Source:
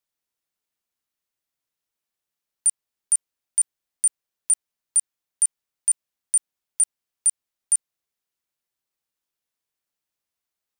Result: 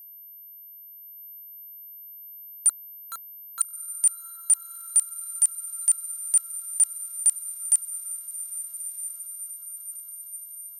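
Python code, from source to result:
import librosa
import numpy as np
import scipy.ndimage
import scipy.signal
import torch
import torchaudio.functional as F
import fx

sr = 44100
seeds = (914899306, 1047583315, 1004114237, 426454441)

y = fx.median_filter(x, sr, points=25, at=(2.69, 3.61))
y = y + 10.0 ** (-43.0 / 20.0) * np.sin(2.0 * np.pi * 13000.0 * np.arange(len(y)) / sr)
y = fx.echo_diffused(y, sr, ms=1289, feedback_pct=56, wet_db=-10)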